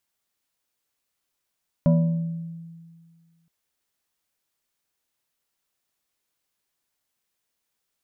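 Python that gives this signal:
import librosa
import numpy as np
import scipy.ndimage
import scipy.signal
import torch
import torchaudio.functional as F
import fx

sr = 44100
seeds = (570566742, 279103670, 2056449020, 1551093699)

y = fx.fm2(sr, length_s=1.62, level_db=-13, carrier_hz=166.0, ratio=2.46, index=0.77, index_s=1.37, decay_s=1.9, shape='exponential')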